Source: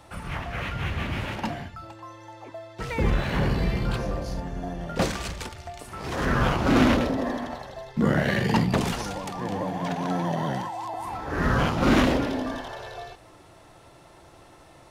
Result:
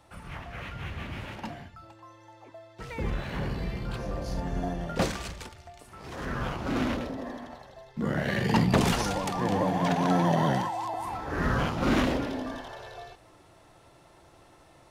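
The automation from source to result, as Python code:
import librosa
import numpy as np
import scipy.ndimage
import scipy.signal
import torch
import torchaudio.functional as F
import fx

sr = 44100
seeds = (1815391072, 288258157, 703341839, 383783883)

y = fx.gain(x, sr, db=fx.line((3.88, -8.0), (4.57, 2.5), (5.69, -9.5), (7.9, -9.5), (8.92, 3.0), (10.46, 3.0), (11.69, -5.0)))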